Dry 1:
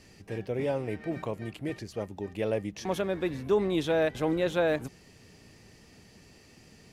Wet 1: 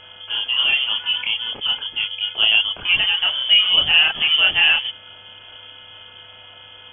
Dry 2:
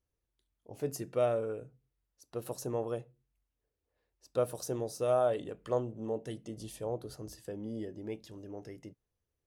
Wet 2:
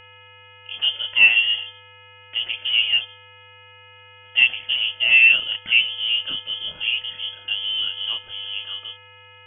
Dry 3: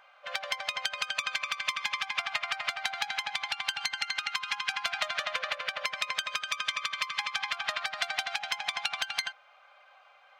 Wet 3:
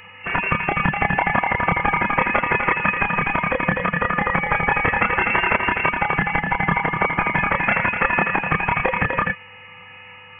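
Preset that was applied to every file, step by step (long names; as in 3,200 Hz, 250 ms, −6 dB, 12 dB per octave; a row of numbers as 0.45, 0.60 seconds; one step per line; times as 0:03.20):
multi-voice chorus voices 6, 0.75 Hz, delay 29 ms, depth 2 ms
hum with harmonics 400 Hz, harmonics 37, −60 dBFS −2 dB per octave
voice inversion scrambler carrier 3,300 Hz
normalise the peak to −3 dBFS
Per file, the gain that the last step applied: +14.5, +16.0, +17.0 decibels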